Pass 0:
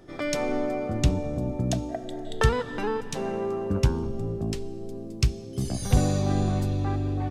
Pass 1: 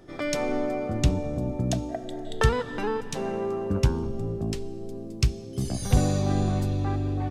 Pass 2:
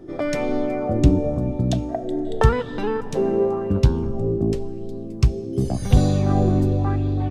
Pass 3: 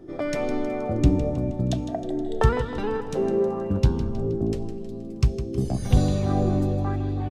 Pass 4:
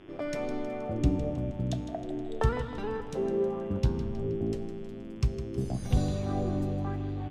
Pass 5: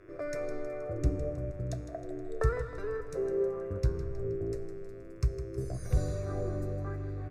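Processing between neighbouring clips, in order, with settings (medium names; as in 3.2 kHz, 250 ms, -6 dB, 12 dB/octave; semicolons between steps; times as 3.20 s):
no audible change
tilt shelf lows +5 dB; sweeping bell 0.91 Hz 310–4100 Hz +9 dB; trim +1 dB
feedback delay 158 ms, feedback 53%, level -11.5 dB; trim -3.5 dB
on a send at -15.5 dB: reverberation RT60 1.5 s, pre-delay 5 ms; on the sum: mains buzz 100 Hz, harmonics 35, -53 dBFS -2 dB/octave; trim -7 dB
static phaser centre 850 Hz, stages 6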